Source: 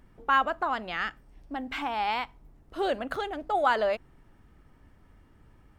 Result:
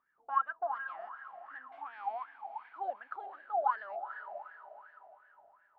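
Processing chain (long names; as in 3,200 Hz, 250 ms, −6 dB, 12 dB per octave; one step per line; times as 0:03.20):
feedback delay with all-pass diffusion 453 ms, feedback 46%, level −9 dB
LFO wah 2.7 Hz 680–1,700 Hz, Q 15
level +2 dB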